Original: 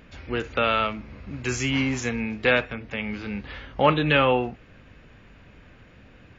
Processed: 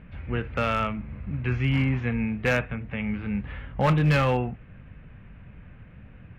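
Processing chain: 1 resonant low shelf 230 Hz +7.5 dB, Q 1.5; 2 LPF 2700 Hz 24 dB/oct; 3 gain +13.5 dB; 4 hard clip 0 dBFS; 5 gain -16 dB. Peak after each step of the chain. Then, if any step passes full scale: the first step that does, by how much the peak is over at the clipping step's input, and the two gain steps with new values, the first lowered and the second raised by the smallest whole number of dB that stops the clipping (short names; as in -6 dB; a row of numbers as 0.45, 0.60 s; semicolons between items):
-4.5, -4.5, +9.0, 0.0, -16.0 dBFS; step 3, 9.0 dB; step 3 +4.5 dB, step 5 -7 dB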